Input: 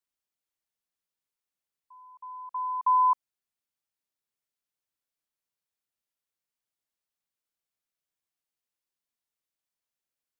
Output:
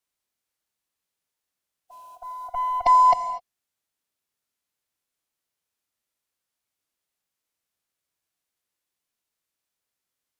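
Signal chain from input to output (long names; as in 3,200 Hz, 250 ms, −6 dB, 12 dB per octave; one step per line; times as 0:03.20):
harmonic generator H 7 −35 dB, 8 −37 dB, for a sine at −17.5 dBFS
formants moved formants −6 semitones
reverb whose tail is shaped and stops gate 270 ms flat, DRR 9 dB
level +6 dB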